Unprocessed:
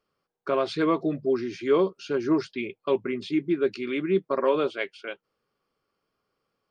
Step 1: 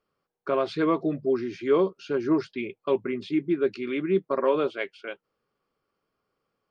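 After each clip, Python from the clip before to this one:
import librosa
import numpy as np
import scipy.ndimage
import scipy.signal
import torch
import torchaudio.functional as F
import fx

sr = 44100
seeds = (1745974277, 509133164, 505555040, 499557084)

y = fx.high_shelf(x, sr, hz=4500.0, db=-8.5)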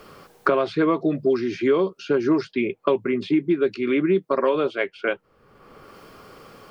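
y = fx.band_squash(x, sr, depth_pct=100)
y = F.gain(torch.from_numpy(y), 3.5).numpy()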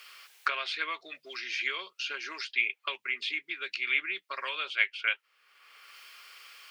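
y = fx.highpass_res(x, sr, hz=2400.0, q=1.7)
y = F.gain(torch.from_numpy(y), 1.0).numpy()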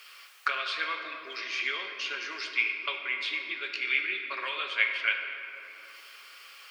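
y = fx.room_shoebox(x, sr, seeds[0], volume_m3=150.0, walls='hard', distance_m=0.32)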